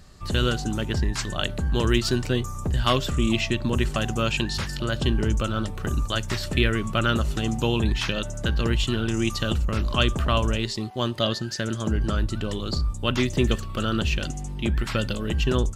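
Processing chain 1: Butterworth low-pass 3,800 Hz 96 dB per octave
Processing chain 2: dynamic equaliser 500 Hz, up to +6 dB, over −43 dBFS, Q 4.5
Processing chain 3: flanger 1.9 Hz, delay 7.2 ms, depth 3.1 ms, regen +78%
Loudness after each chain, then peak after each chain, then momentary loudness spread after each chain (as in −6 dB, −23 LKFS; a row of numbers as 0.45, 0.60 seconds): −25.5, −25.0, −29.5 LKFS; −6.5, −6.0, −11.5 dBFS; 6, 5, 5 LU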